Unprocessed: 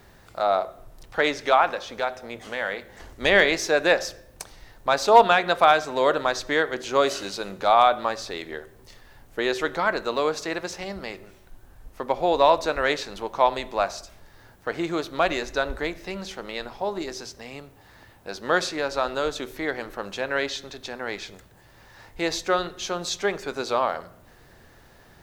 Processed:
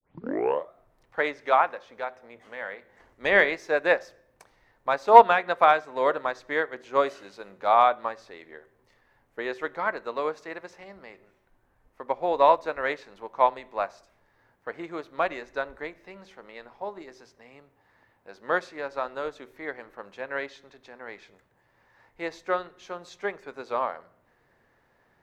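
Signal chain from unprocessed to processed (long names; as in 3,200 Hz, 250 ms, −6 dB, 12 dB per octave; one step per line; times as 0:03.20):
turntable start at the beginning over 0.72 s
octave-band graphic EQ 125/250/500/1,000/2,000 Hz +5/+6/+8/+9/+10 dB
expander for the loud parts 1.5 to 1, over −23 dBFS
level −9 dB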